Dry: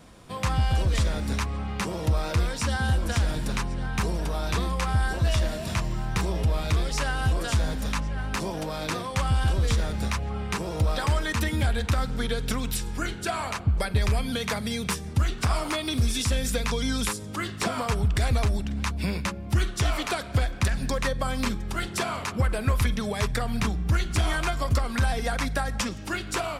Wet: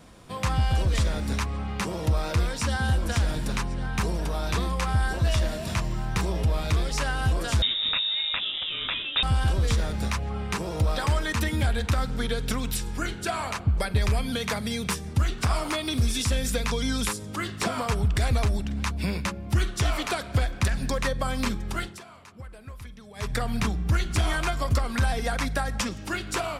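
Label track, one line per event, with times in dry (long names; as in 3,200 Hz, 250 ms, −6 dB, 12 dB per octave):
7.620000	9.230000	voice inversion scrambler carrier 3,700 Hz
21.770000	23.360000	duck −18 dB, fades 0.23 s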